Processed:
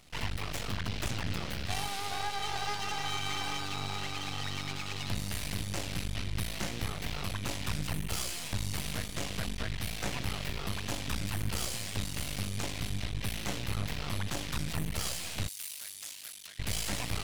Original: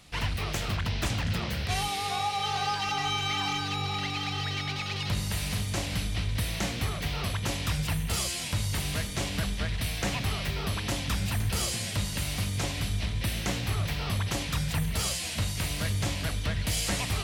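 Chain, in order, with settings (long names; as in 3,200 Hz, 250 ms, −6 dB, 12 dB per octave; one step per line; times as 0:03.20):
half-wave rectification
0:15.48–0:16.59: first difference
level −1 dB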